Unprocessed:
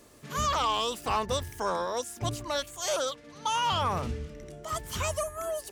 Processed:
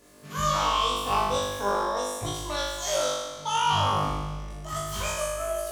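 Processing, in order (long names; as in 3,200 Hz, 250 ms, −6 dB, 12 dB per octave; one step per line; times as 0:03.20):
flutter between parallel walls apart 3.4 metres, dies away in 1.2 s
level −3.5 dB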